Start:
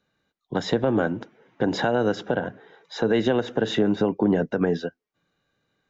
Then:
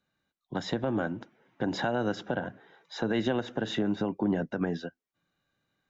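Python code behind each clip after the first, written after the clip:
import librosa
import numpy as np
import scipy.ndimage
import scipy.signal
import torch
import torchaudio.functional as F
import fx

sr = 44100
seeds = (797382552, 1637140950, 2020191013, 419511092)

y = fx.peak_eq(x, sr, hz=450.0, db=-7.0, octaves=0.34)
y = fx.rider(y, sr, range_db=10, speed_s=2.0)
y = F.gain(torch.from_numpy(y), -5.5).numpy()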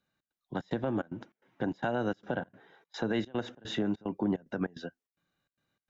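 y = fx.step_gate(x, sr, bpm=148, pattern='xx.xxx.xxx.', floor_db=-24.0, edge_ms=4.5)
y = F.gain(torch.from_numpy(y), -2.0).numpy()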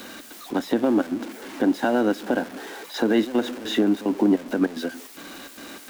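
y = x + 0.5 * 10.0 ** (-40.5 / 20.0) * np.sign(x)
y = fx.low_shelf_res(y, sr, hz=190.0, db=-10.5, q=3.0)
y = F.gain(torch.from_numpy(y), 7.0).numpy()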